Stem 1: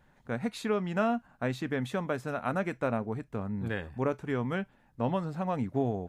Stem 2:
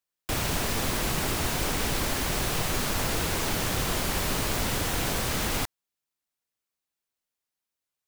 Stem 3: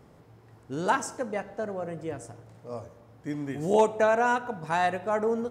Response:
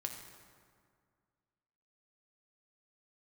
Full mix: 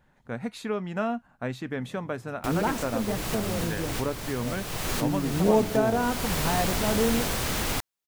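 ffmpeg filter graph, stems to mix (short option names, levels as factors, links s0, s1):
-filter_complex "[0:a]volume=0.944,asplit=2[s0][s1];[1:a]adelay=2150,volume=1[s2];[2:a]equalizer=f=190:t=o:w=2.4:g=14.5,adelay=1750,volume=0.447[s3];[s1]apad=whole_len=450941[s4];[s2][s4]sidechaincompress=threshold=0.02:ratio=12:attack=6.1:release=530[s5];[s0][s5][s3]amix=inputs=3:normalize=0"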